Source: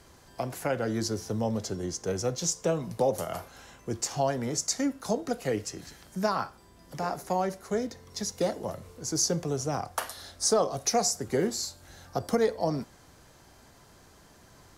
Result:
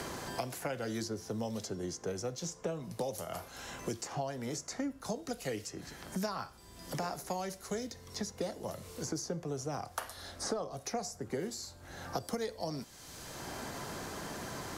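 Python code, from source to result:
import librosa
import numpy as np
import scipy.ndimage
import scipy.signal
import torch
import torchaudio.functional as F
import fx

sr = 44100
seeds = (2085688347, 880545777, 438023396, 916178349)

y = fx.band_squash(x, sr, depth_pct=100)
y = F.gain(torch.from_numpy(y), -8.5).numpy()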